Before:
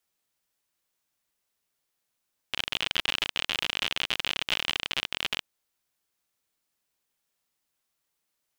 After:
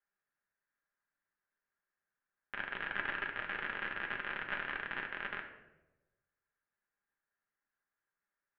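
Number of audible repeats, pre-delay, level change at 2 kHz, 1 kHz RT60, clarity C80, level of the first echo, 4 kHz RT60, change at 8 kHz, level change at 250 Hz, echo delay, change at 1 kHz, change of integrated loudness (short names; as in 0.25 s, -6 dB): none, 5 ms, -4.0 dB, 0.90 s, 10.5 dB, none, 0.60 s, under -35 dB, -6.0 dB, none, -3.5 dB, -10.0 dB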